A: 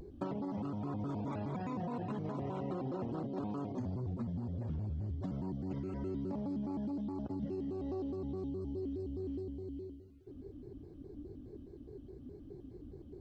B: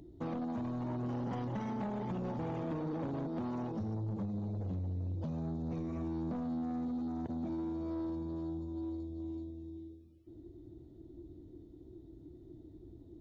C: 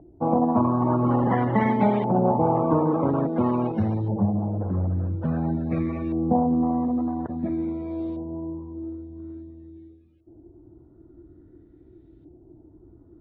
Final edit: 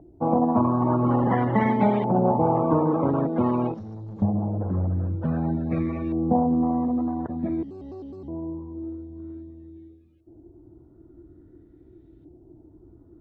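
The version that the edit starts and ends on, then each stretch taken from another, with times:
C
3.74–4.22 s: from B
7.63–8.28 s: from A

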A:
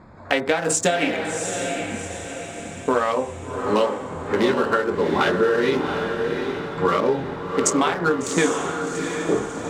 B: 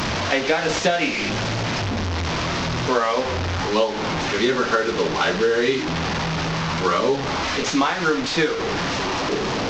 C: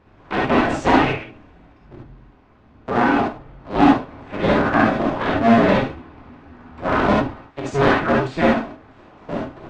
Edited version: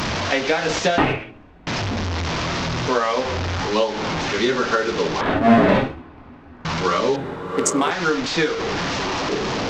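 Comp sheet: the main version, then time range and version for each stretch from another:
B
0.98–1.67 s: from C
5.21–6.65 s: from C
7.16–7.91 s: from A

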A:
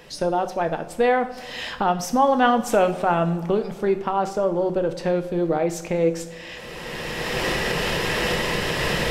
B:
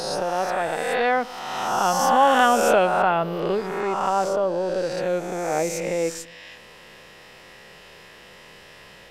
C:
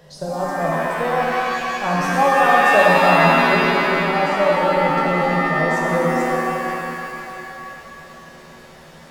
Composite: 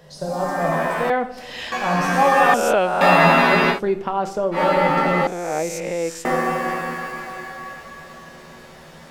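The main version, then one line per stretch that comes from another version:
C
1.10–1.72 s: from A
2.54–3.01 s: from B
3.75–4.56 s: from A, crossfade 0.10 s
5.27–6.25 s: from B

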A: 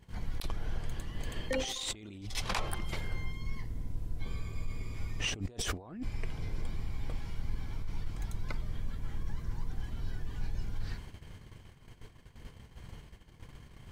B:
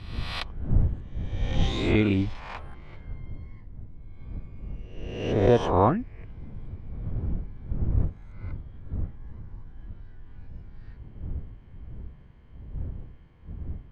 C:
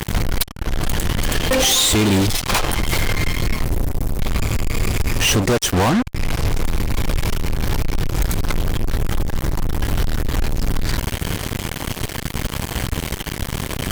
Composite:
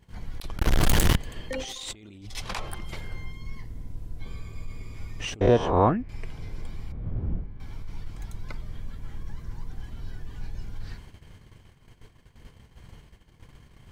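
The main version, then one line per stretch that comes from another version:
A
0.58–1.16 s: from C
5.41–6.09 s: from B
6.92–7.60 s: from B

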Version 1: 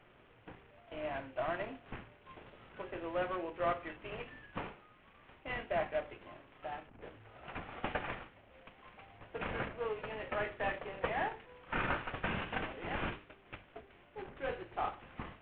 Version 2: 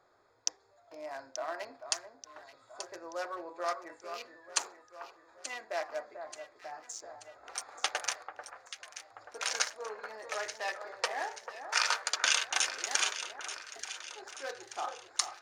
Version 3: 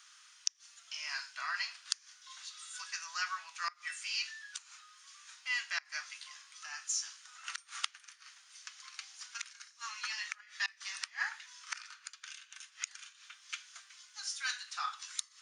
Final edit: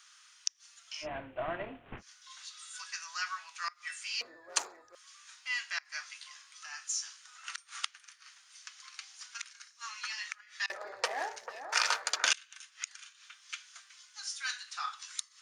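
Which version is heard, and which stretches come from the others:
3
1.04–2.00 s: from 1, crossfade 0.06 s
4.21–4.95 s: from 2
10.70–12.33 s: from 2

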